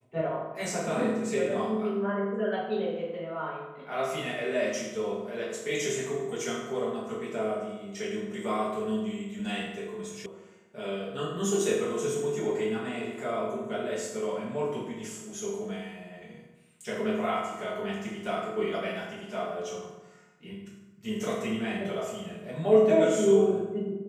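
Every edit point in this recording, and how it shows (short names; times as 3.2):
10.26 sound cut off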